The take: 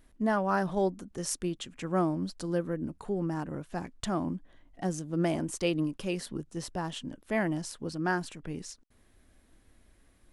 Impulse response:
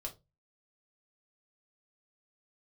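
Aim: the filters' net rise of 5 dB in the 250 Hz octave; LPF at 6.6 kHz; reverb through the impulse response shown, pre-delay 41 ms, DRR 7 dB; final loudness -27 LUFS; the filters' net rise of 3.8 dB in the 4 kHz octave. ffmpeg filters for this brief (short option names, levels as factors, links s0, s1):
-filter_complex "[0:a]lowpass=6600,equalizer=f=250:t=o:g=7.5,equalizer=f=4000:t=o:g=6,asplit=2[s0][s1];[1:a]atrim=start_sample=2205,adelay=41[s2];[s1][s2]afir=irnorm=-1:irlink=0,volume=0.562[s3];[s0][s3]amix=inputs=2:normalize=0,volume=1.12"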